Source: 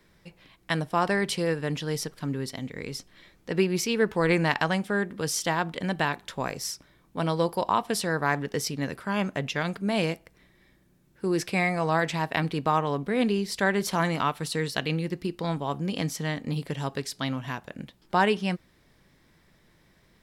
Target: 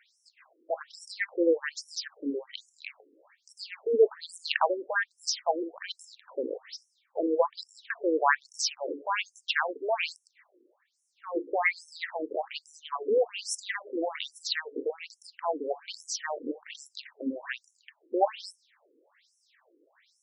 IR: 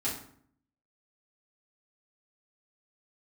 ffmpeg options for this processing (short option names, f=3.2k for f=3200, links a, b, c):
-af "bandreject=f=142.8:t=h:w=4,bandreject=f=285.6:t=h:w=4,bandreject=f=428.4:t=h:w=4,afftfilt=real='re*between(b*sr/1024,360*pow(7700/360,0.5+0.5*sin(2*PI*1.2*pts/sr))/1.41,360*pow(7700/360,0.5+0.5*sin(2*PI*1.2*pts/sr))*1.41)':imag='im*between(b*sr/1024,360*pow(7700/360,0.5+0.5*sin(2*PI*1.2*pts/sr))/1.41,360*pow(7700/360,0.5+0.5*sin(2*PI*1.2*pts/sr))*1.41)':win_size=1024:overlap=0.75,volume=5.5dB"